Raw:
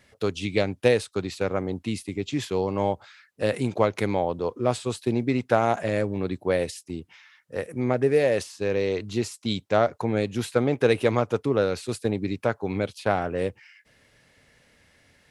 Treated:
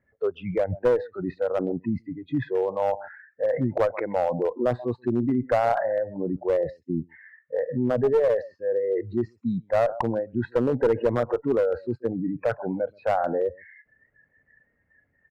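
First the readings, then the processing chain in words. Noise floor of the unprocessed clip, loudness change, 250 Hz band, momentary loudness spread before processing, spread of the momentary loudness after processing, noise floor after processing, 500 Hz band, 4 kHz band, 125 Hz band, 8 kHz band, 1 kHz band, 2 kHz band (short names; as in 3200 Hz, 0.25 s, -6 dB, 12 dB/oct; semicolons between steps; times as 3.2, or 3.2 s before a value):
-63 dBFS, 0.0 dB, -0.5 dB, 8 LU, 8 LU, -71 dBFS, +1.0 dB, under -10 dB, -3.0 dB, under -15 dB, -0.5 dB, -5.5 dB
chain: formant sharpening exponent 1.5; in parallel at 0 dB: negative-ratio compressor -33 dBFS, ratio -1; on the sum: LPF 1700 Hz 24 dB/oct; on a send: echo 0.131 s -15.5 dB; on the sum: spectral noise reduction 22 dB; one-sided clip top -17.5 dBFS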